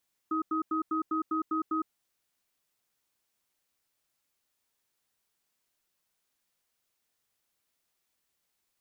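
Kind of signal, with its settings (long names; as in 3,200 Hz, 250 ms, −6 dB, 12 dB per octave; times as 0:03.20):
tone pair in a cadence 317 Hz, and 1,260 Hz, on 0.11 s, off 0.09 s, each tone −29.5 dBFS 1.54 s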